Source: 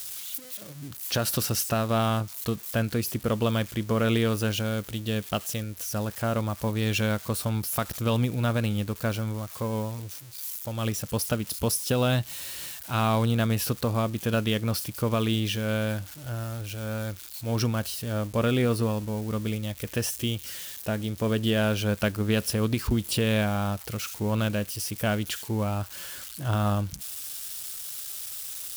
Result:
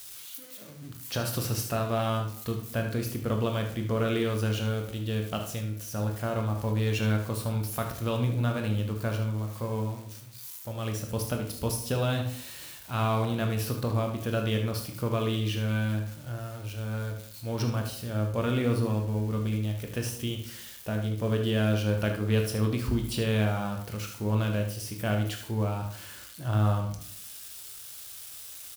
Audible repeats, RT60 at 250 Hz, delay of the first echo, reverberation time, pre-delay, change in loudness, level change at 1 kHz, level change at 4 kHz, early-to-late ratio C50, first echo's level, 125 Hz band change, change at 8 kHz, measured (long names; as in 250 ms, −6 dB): 1, 0.70 s, 75 ms, 0.65 s, 16 ms, −2.0 dB, −3.0 dB, −5.0 dB, 6.5 dB, −9.5 dB, 0.0 dB, −6.5 dB